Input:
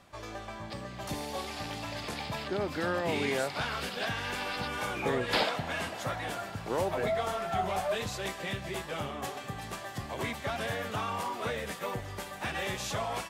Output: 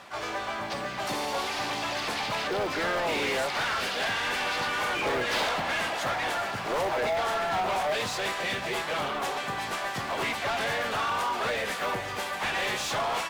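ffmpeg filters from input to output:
ffmpeg -i in.wav -filter_complex "[0:a]asplit=2[link_01][link_02];[link_02]asetrate=55563,aresample=44100,atempo=0.793701,volume=-7dB[link_03];[link_01][link_03]amix=inputs=2:normalize=0,acrusher=bits=6:mode=log:mix=0:aa=0.000001,asplit=2[link_04][link_05];[link_05]highpass=frequency=720:poles=1,volume=24dB,asoftclip=type=tanh:threshold=-16dB[link_06];[link_04][link_06]amix=inputs=2:normalize=0,lowpass=frequency=3900:poles=1,volume=-6dB,volume=-4.5dB" out.wav

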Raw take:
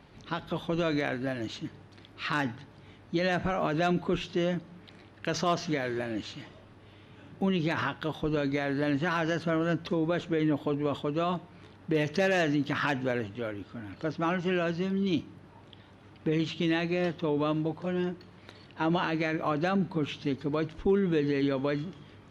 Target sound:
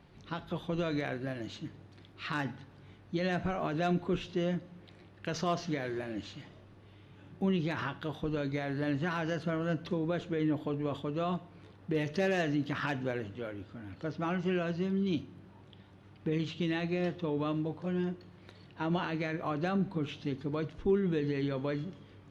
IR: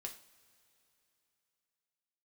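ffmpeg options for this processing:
-filter_complex "[0:a]asplit=2[link_01][link_02];[1:a]atrim=start_sample=2205,lowshelf=frequency=340:gain=10.5[link_03];[link_02][link_03]afir=irnorm=-1:irlink=0,volume=-4dB[link_04];[link_01][link_04]amix=inputs=2:normalize=0,volume=-8.5dB"

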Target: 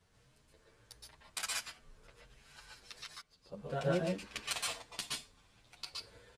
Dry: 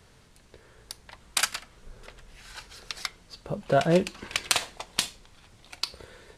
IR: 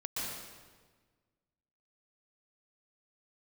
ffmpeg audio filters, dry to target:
-filter_complex "[0:a]asettb=1/sr,asplit=3[link_01][link_02][link_03];[link_01]atrim=end=3.054[link_04];[link_02]atrim=start=3.05:end=3.52,asetpts=PTS-STARTPTS,afade=type=in:duration=0.004:curve=qsin,afade=type=out:start_time=0.466:duration=0.004:curve=qsin,acompressor=threshold=-50dB:ratio=3[link_05];[link_03]atrim=start=3.516[link_06];[link_04][link_05]acrossfade=duration=0.004:curve1=hsin:curve2=qsin[link_07];[link_07][link_06]acrossfade=duration=0.004:curve1=qsin:curve2=hsin[link_08];[1:a]atrim=start_sample=2205,afade=type=out:start_time=0.2:duration=0.01,atrim=end_sample=9261[link_09];[link_08][link_09]afir=irnorm=-1:irlink=0,asplit=2[link_10][link_11];[link_11]adelay=8.8,afreqshift=1.5[link_12];[link_10][link_12]amix=inputs=2:normalize=1,volume=-7.5dB"

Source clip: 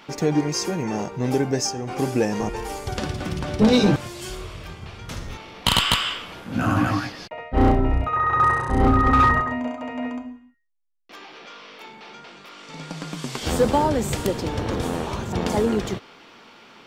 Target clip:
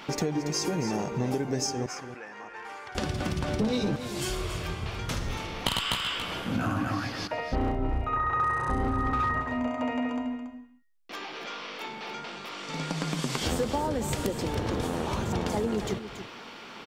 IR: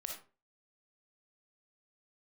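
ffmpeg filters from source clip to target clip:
-filter_complex "[0:a]acompressor=threshold=-30dB:ratio=6,asettb=1/sr,asplit=3[link_01][link_02][link_03];[link_01]atrim=end=1.864[link_04];[link_02]atrim=start=1.86:end=2.95,asetpts=PTS-STARTPTS,afade=type=in:duration=0.004:curve=qsin,afade=type=out:start_time=1.086:duration=0.004:curve=qsin,bandpass=frequency=1600:width_type=q:width=1.9:csg=0[link_05];[link_03]atrim=start=2.946[link_06];[link_04][link_05]acrossfade=duration=0.004:curve1=hsin:curve2=qsin[link_07];[link_07][link_06]acrossfade=duration=0.004:curve1=qsin:curve2=hsin,asplit=2[link_08][link_09];[link_09]aecho=0:1:281:0.299[link_10];[link_08][link_10]amix=inputs=2:normalize=0,volume=3.5dB"

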